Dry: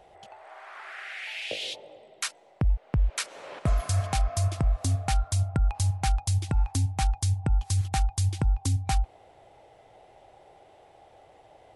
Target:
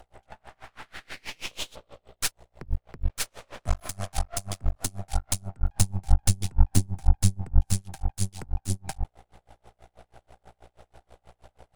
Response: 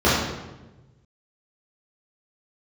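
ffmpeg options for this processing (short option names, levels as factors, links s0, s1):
-filter_complex "[0:a]aeval=exprs='val(0)+0.00316*(sin(2*PI*60*n/s)+sin(2*PI*2*60*n/s)/2+sin(2*PI*3*60*n/s)/3+sin(2*PI*4*60*n/s)/4+sin(2*PI*5*60*n/s)/5)':c=same,acrossover=split=120|910|4100[s0][s1][s2][s3];[s1]crystalizer=i=8.5:c=0[s4];[s0][s4][s2][s3]amix=inputs=4:normalize=0,aemphasis=mode=production:type=cd,aeval=exprs='max(val(0),0)':c=same,asettb=1/sr,asplit=3[s5][s6][s7];[s5]atrim=end=5.744[s8];[s6]atrim=start=5.74:end=7.73,asetpts=PTS-STARTPTS,afade=t=in:d=0.004:c=qsin,afade=t=out:st=1.986:d=0.004:c=qsin,lowshelf=f=420:g=7.5[s9];[s7]atrim=start=7.726[s10];[s8][s9]acrossfade=d=0.004:c1=hsin:c2=qsin[s11];[s11][s10]acrossfade=d=0.004:c1=qsin:c2=hsin,aeval=exprs='val(0)*pow(10,-32*(0.5-0.5*cos(2*PI*6.2*n/s))/20)':c=same,volume=2"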